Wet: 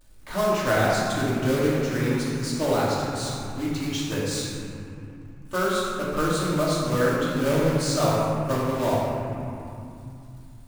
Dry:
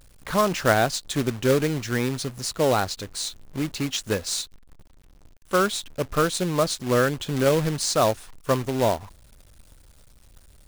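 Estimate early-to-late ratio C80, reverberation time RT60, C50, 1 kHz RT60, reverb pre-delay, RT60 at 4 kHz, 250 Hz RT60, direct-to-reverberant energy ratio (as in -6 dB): -0.5 dB, 2.7 s, -2.5 dB, 2.7 s, 3 ms, 1.6 s, 3.7 s, -8.0 dB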